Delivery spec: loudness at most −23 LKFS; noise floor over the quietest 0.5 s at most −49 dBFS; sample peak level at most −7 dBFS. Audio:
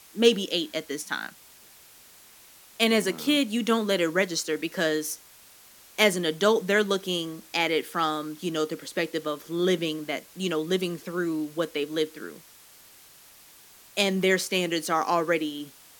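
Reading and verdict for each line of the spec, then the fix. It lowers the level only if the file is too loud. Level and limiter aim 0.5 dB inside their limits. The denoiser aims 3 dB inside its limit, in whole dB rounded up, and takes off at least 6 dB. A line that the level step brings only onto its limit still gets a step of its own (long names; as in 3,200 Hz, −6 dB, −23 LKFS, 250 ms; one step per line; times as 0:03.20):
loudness −26.5 LKFS: in spec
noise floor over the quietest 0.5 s −53 dBFS: in spec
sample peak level −5.0 dBFS: out of spec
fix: brickwall limiter −7.5 dBFS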